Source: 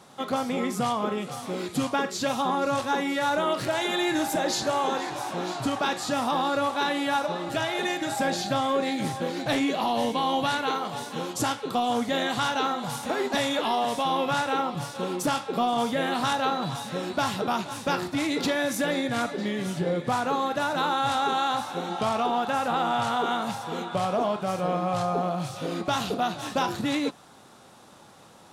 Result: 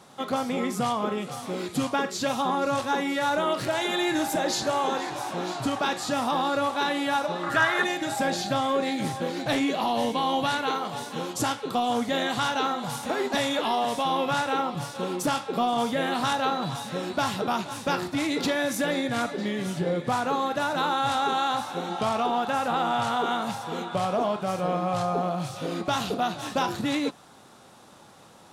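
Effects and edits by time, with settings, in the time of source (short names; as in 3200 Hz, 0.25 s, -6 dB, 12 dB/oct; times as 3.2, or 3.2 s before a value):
7.43–7.84 band shelf 1400 Hz +12 dB 1.1 oct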